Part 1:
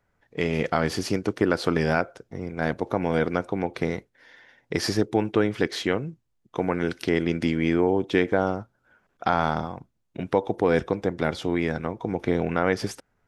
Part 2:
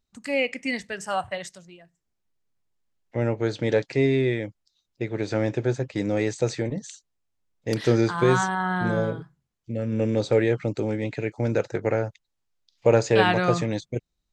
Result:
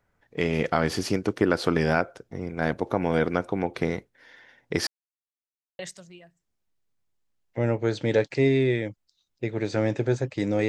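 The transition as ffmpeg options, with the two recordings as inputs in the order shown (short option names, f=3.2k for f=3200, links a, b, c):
-filter_complex "[0:a]apad=whole_dur=10.68,atrim=end=10.68,asplit=2[a][b];[a]atrim=end=4.87,asetpts=PTS-STARTPTS,afade=t=out:st=4.866:d=0.004:c=hsin[c];[b]atrim=start=4.87:end=5.79,asetpts=PTS-STARTPTS,volume=0[d];[1:a]atrim=start=1.37:end=6.26,asetpts=PTS-STARTPTS,afade=t=in:d=0.004:c=hsin[e];[c][d][e]concat=n=3:v=0:a=1"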